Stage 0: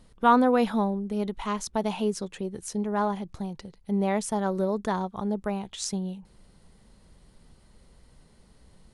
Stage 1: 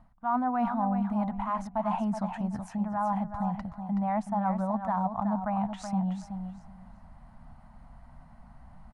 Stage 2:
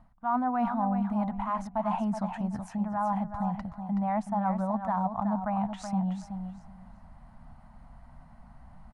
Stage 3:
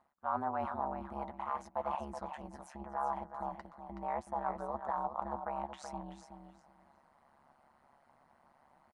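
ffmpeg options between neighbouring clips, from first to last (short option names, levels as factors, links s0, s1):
-af "firequalizer=gain_entry='entry(250,0);entry(400,-29);entry(680,8);entry(3400,-18);entry(7800,-20)':delay=0.05:min_phase=1,areverse,acompressor=threshold=0.0282:ratio=6,areverse,aecho=1:1:375|750|1125:0.398|0.0677|0.0115,volume=1.68"
-af anull
-filter_complex "[0:a]highpass=380,tremolo=f=140:d=1,asplit=2[s0][s1];[s1]adelay=12,volume=0.224[s2];[s0][s2]amix=inputs=2:normalize=0,volume=0.794"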